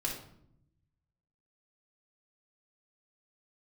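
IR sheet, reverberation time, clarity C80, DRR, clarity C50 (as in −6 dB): 0.70 s, 9.0 dB, −3.0 dB, 4.5 dB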